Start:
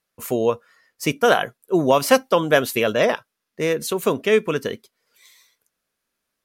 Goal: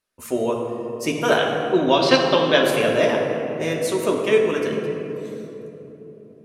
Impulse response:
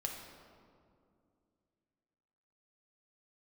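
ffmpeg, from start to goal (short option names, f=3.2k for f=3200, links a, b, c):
-filter_complex "[0:a]asettb=1/sr,asplit=3[a][b][c];[a]atrim=end=1.374[d];[b]atrim=start=1.37:end=2.63,asetpts=PTS-STARTPTS,afade=t=in:d=0.004:c=qsin,afade=t=out:st=1.256:d=0.004:c=qsin,lowpass=f=4k:t=q:w=5.2[e];[c]atrim=start=2.626[f];[d][e]acrossfade=d=0.004:c1=hsin:c2=qsin[g];[g][f]acrossfade=d=0.004:c1=qsin:c2=hsin[h];[1:a]atrim=start_sample=2205,asetrate=22932,aresample=44100[i];[h][i]afir=irnorm=-1:irlink=0,volume=-5dB"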